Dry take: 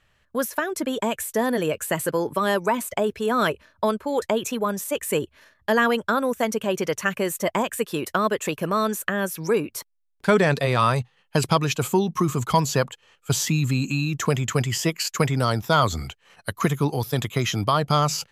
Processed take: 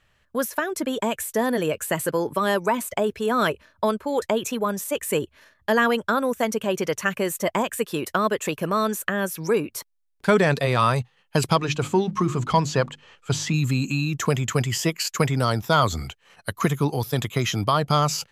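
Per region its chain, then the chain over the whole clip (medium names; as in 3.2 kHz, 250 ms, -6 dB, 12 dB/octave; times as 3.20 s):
11.56–13.54 s: companding laws mixed up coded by mu + distance through air 77 m + hum notches 50/100/150/200/250/300/350 Hz
whole clip: none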